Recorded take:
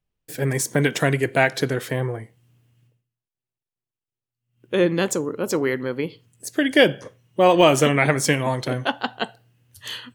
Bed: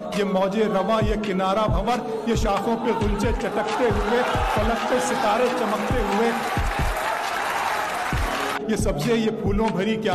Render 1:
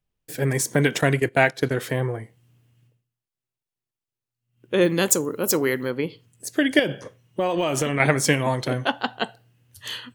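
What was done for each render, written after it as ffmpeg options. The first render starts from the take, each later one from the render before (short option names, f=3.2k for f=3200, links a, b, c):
-filter_complex "[0:a]asettb=1/sr,asplit=3[a][b][c];[a]atrim=end=1.014[d];[b]atrim=start=1.01:end=1.78,asetpts=PTS-STARTPTS,afade=t=in:d=0.004:c=qsin,afade=t=out:st=0.766:d=0.004:c=qsin,agate=range=-12dB:threshold=-27dB:ratio=16:release=100:detection=peak[e];[c]atrim=start=1.776[f];[d][e]acrossfade=d=0.004:c1=hsin:c2=qsin[g];[g][f]acrossfade=d=0.004:c1=qsin:c2=hsin,asettb=1/sr,asplit=3[h][i][j];[h]atrim=end=4.814[k];[i]atrim=start=4.81:end=5.91,asetpts=PTS-STARTPTS,afade=t=in:d=0.004:c=qsin,afade=t=out:st=1.096:d=0.004:c=qsin,aemphasis=mode=production:type=50fm[l];[j]atrim=start=5.906[m];[k][l]acrossfade=d=0.004:c1=hsin:c2=qsin[n];[n][m]acrossfade=d=0.004:c1=qsin:c2=hsin,asettb=1/sr,asplit=3[o][p][q];[o]atrim=end=6.794[r];[p]atrim=start=6.79:end=8,asetpts=PTS-STARTPTS,afade=t=in:d=0.004:c=qsin,afade=t=out:st=1.206:d=0.004:c=qsin,acompressor=threshold=-19dB:ratio=6:attack=3.2:release=140:knee=1:detection=peak[s];[q]atrim=start=7.996[t];[r][s]acrossfade=d=0.004:c1=hsin:c2=qsin[u];[u][t]acrossfade=d=0.004:c1=qsin:c2=hsin"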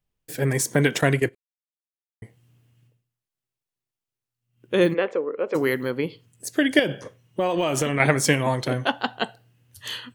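-filter_complex "[0:a]asplit=3[a][b][c];[a]afade=t=out:st=4.93:d=0.02[d];[b]highpass=460,equalizer=f=490:t=q:w=4:g=8,equalizer=f=890:t=q:w=4:g=-5,equalizer=f=1.5k:t=q:w=4:g=-4,equalizer=f=2.3k:t=q:w=4:g=3,lowpass=f=2.3k:w=0.5412,lowpass=f=2.3k:w=1.3066,afade=t=in:st=4.93:d=0.02,afade=t=out:st=5.54:d=0.02[e];[c]afade=t=in:st=5.54:d=0.02[f];[d][e][f]amix=inputs=3:normalize=0,asplit=3[g][h][i];[g]atrim=end=1.35,asetpts=PTS-STARTPTS,afade=t=out:st=1.346:d=0.004:c=hsin[j];[h]atrim=start=1.35:end=2.22,asetpts=PTS-STARTPTS,volume=0[k];[i]atrim=start=2.22,asetpts=PTS-STARTPTS,afade=t=in:d=0.004:c=hsin[l];[j][k][l]concat=n=3:v=0:a=1"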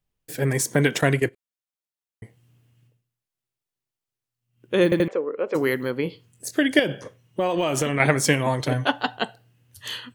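-filter_complex "[0:a]asettb=1/sr,asplit=3[a][b][c];[a]atrim=end=6.034[d];[b]atrim=start=6.03:end=6.6,asetpts=PTS-STARTPTS,afade=t=in:d=0.004:c=qsin,afade=t=out:st=0.566:d=0.004:c=qsin,asplit=2[e][f];[f]adelay=23,volume=-8dB[g];[e][g]amix=inputs=2:normalize=0,atrim=end_sample=25137[h];[c]atrim=start=6.596[i];[d][h]acrossfade=d=0.004:c1=hsin:c2=qsin[j];[j][i]acrossfade=d=0.004:c1=qsin:c2=hsin,asettb=1/sr,asplit=3[k][l][m];[k]atrim=end=8.594[n];[l]atrim=start=8.59:end=9.17,asetpts=PTS-STARTPTS,afade=t=in:d=0.004:c=qsin,afade=t=out:st=0.576:d=0.004:c=qsin,aecho=1:1:6.8:0.59,atrim=end_sample=25578[o];[m]atrim=start=9.166[p];[n][o]acrossfade=d=0.004:c1=hsin:c2=qsin[q];[q][p]acrossfade=d=0.004:c1=qsin:c2=hsin,asplit=4[r][s][t][u];[r]atrim=end=4.922[v];[s]atrim=start=4.838:end=4.922[w];[t]atrim=start=4.838:end=4.922[x];[u]atrim=start=5.078[y];[v][w]acrossfade=d=0.004:c1=hsin:c2=hsin[z];[z][x]acrossfade=d=0.004:c1=hsin:c2=hsin[aa];[aa][y]acrossfade=d=0.004:c1=hsin:c2=hsin"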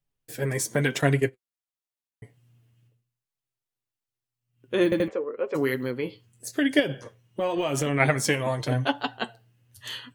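-af "flanger=delay=7:depth=2.5:regen=36:speed=0.89:shape=sinusoidal"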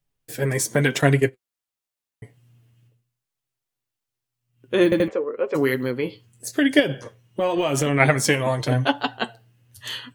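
-af "volume=4.5dB"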